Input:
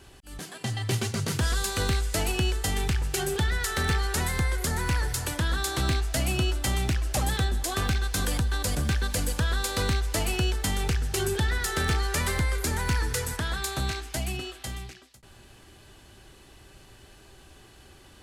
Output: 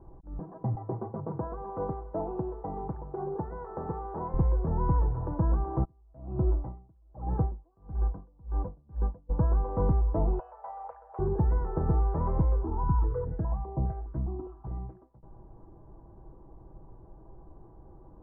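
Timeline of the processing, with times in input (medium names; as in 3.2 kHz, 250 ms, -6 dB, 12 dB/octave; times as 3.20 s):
0.75–4.34 s: band-pass filter 770 Hz, Q 0.53
5.83–9.29 s: logarithmic tremolo 0.76 Hz -> 2.6 Hz, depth 37 dB
10.39–11.19 s: elliptic high-pass 550 Hz
12.63–14.71 s: stepped phaser 4.9 Hz 560–5100 Hz
whole clip: elliptic low-pass 1 kHz, stop band 80 dB; bass shelf 85 Hz +7 dB; comb 6.1 ms, depth 42%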